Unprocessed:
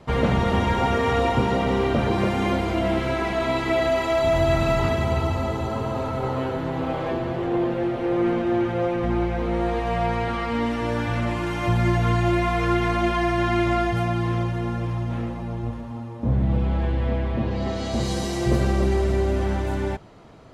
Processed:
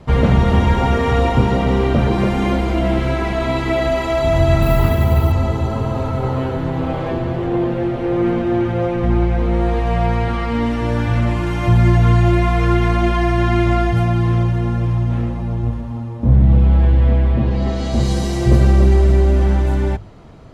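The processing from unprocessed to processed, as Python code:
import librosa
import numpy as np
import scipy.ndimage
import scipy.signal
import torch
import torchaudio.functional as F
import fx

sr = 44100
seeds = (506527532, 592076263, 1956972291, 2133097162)

y = fx.resample_bad(x, sr, factor=3, down='none', up='hold', at=(4.62, 5.32))
y = fx.low_shelf(y, sr, hz=150.0, db=11.5)
y = fx.hum_notches(y, sr, base_hz=50, count=2)
y = F.gain(torch.from_numpy(y), 2.5).numpy()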